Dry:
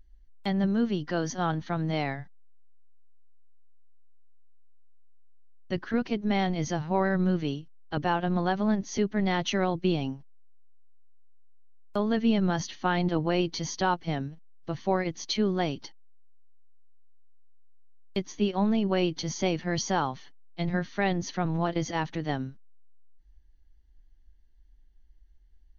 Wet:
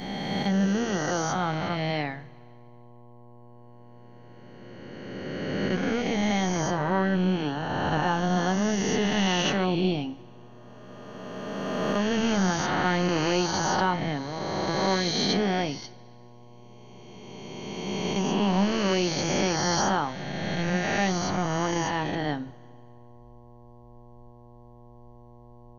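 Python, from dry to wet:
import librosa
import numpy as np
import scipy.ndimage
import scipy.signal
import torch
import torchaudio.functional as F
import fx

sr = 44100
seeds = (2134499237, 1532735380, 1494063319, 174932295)

y = fx.spec_swells(x, sr, rise_s=2.92)
y = fx.rev_double_slope(y, sr, seeds[0], early_s=0.29, late_s=2.2, knee_db=-19, drr_db=10.5)
y = fx.dmg_buzz(y, sr, base_hz=120.0, harmonics=9, level_db=-49.0, tilt_db=-4, odd_only=False)
y = y * librosa.db_to_amplitude(-2.0)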